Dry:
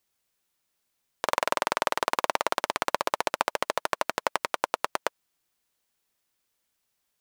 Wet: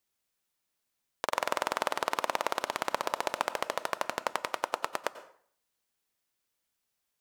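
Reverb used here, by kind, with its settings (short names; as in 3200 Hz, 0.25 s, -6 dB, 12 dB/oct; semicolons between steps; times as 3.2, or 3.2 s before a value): plate-style reverb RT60 0.55 s, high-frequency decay 0.75×, pre-delay 80 ms, DRR 13.5 dB; gain -4.5 dB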